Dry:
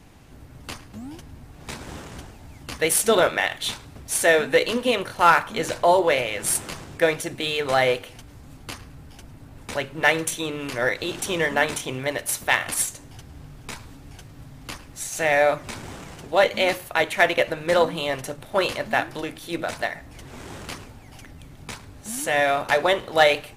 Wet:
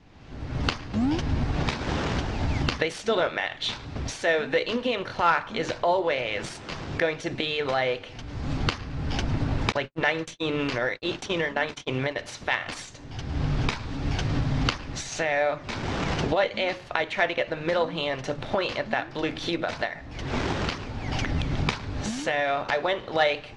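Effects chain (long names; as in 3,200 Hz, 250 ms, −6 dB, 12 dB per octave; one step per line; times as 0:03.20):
camcorder AGC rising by 37 dB per second
0:09.72–0:12.16: noise gate −23 dBFS, range −58 dB
low-pass filter 5,400 Hz 24 dB per octave
level −6 dB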